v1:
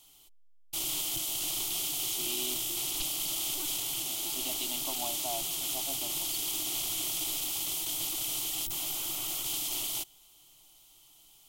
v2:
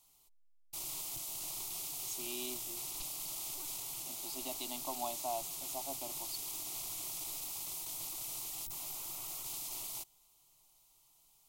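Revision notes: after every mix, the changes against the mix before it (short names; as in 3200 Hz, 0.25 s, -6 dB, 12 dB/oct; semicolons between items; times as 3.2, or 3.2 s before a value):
background -8.0 dB; master: add thirty-one-band EQ 315 Hz -7 dB, 1000 Hz +5 dB, 1600 Hz -5 dB, 3150 Hz -11 dB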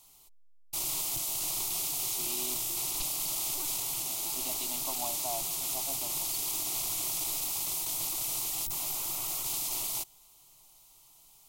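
background +9.0 dB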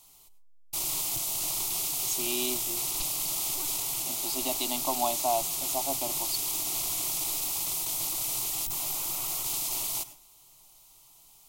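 speech +11.0 dB; reverb: on, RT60 0.35 s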